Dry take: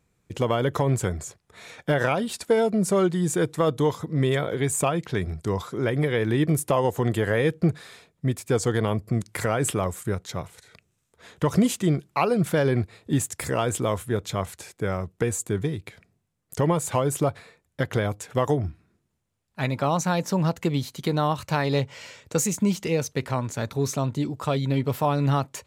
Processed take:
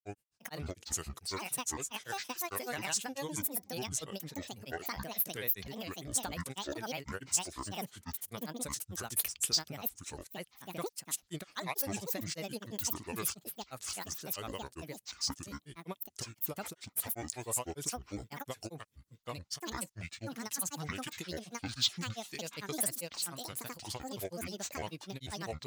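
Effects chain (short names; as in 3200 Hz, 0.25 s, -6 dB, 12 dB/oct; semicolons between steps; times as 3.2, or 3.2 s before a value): pre-emphasis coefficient 0.9; grains, grains 20/s, spray 0.821 s, pitch spread up and down by 12 st; gain +1.5 dB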